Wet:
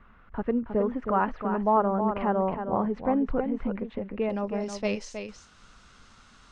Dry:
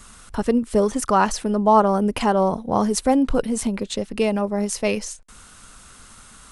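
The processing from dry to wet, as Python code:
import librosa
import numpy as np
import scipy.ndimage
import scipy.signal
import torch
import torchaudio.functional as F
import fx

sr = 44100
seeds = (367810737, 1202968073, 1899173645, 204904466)

y = fx.lowpass(x, sr, hz=fx.steps((0.0, 2200.0), (4.3, 5700.0)), slope=24)
y = y + 10.0 ** (-7.5 / 20.0) * np.pad(y, (int(317 * sr / 1000.0), 0))[:len(y)]
y = y * librosa.db_to_amplitude(-7.5)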